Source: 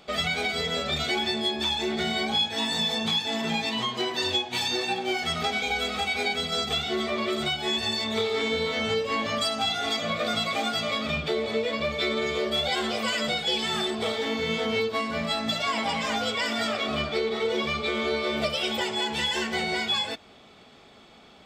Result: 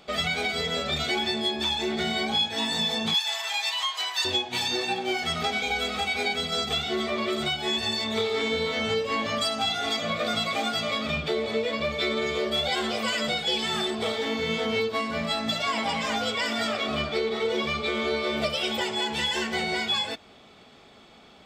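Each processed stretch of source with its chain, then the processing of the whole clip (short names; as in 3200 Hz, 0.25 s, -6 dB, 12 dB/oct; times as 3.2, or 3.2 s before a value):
3.14–4.25 HPF 810 Hz 24 dB/oct + high shelf 5700 Hz +9.5 dB + short-mantissa float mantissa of 6-bit
whole clip: dry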